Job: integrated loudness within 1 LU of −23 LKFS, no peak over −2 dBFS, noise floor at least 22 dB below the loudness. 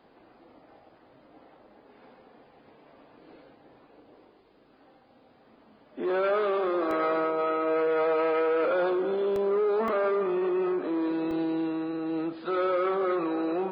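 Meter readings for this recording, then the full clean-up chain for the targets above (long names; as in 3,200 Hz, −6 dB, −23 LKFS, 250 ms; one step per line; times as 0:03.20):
number of dropouts 4; longest dropout 1.9 ms; integrated loudness −27.0 LKFS; sample peak −16.5 dBFS; target loudness −23.0 LKFS
→ repair the gap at 0:06.91/0:09.36/0:09.88/0:11.31, 1.9 ms
level +4 dB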